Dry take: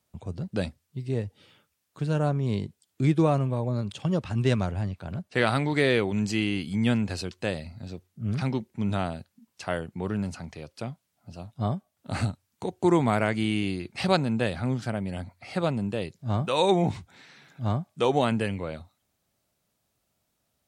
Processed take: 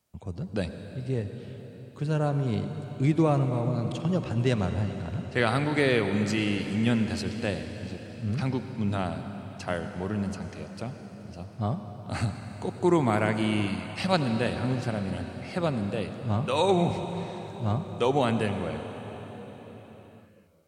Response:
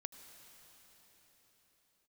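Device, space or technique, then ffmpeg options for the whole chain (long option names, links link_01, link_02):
cathedral: -filter_complex "[1:a]atrim=start_sample=2205[link_01];[0:a][link_01]afir=irnorm=-1:irlink=0,bandreject=frequency=3600:width=23,asettb=1/sr,asplit=3[link_02][link_03][link_04];[link_02]atrim=end=13.674[link_05];[link_03]atrim=start=13.67:end=14.13,asetpts=PTS-STARTPTS,afade=type=in:duration=0.004:curve=qsin,afade=type=out:start_time=0.456:duration=0.004:curve=qsin,equalizer=frequency=360:width=2.7:gain=-13[link_06];[link_04]atrim=start=14.126[link_07];[link_05][link_06]acrossfade=duration=0.004:curve1=hsin:curve2=qsin[link_08];[link_08][link_07]acrossfade=duration=0.004:curve1=qsin:curve2=hsin,volume=3.5dB"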